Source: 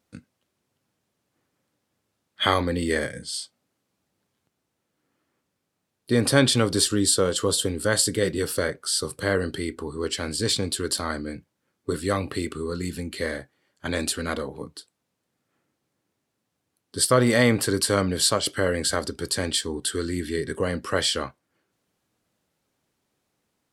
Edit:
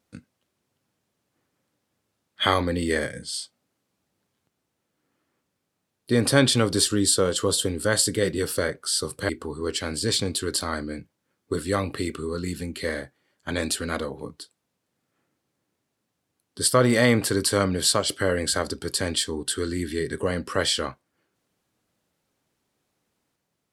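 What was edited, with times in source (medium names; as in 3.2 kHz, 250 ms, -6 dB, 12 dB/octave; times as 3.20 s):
9.29–9.66 s: delete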